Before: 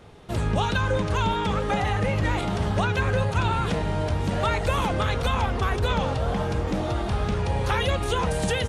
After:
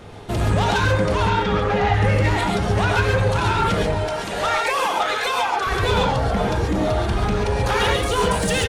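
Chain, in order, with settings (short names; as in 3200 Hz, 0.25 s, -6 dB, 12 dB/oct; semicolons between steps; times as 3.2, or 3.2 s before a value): reverb removal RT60 2 s; 3.94–5.67 HPF 550 Hz 12 dB/oct; soft clip -26 dBFS, distortion -11 dB; 1.15–1.94 air absorption 120 m; echo 0.515 s -12.5 dB; non-linear reverb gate 0.16 s rising, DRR -1 dB; gain +8 dB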